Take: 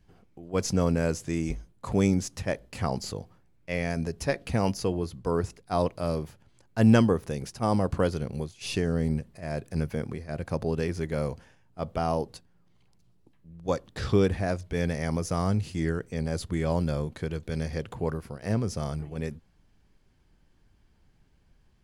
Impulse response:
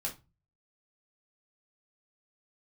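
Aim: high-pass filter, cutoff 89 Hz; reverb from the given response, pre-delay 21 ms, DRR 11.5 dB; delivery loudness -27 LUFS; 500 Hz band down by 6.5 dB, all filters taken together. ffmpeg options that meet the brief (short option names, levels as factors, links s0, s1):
-filter_complex "[0:a]highpass=89,equalizer=f=500:t=o:g=-8,asplit=2[s0][s1];[1:a]atrim=start_sample=2205,adelay=21[s2];[s1][s2]afir=irnorm=-1:irlink=0,volume=0.224[s3];[s0][s3]amix=inputs=2:normalize=0,volume=1.68"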